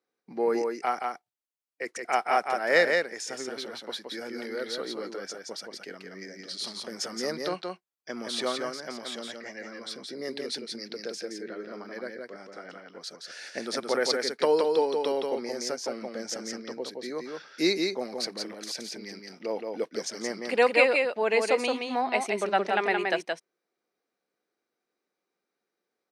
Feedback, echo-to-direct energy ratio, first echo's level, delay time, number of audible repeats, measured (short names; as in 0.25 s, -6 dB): no steady repeat, -4.0 dB, -4.0 dB, 0.172 s, 1